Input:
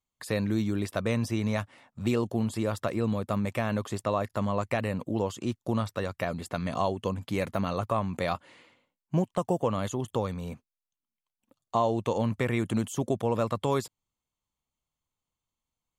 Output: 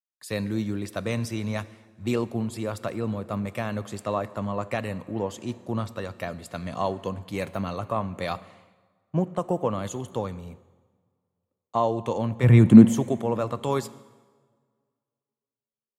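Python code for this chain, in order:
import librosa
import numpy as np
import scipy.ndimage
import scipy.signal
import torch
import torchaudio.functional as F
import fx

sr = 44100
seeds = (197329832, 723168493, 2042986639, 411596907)

y = fx.peak_eq(x, sr, hz=fx.line((12.42, 94.0), (12.93, 310.0)), db=13.5, octaves=1.8, at=(12.42, 12.93), fade=0.02)
y = fx.rev_plate(y, sr, seeds[0], rt60_s=3.6, hf_ratio=0.8, predelay_ms=0, drr_db=14.0)
y = fx.band_widen(y, sr, depth_pct=70)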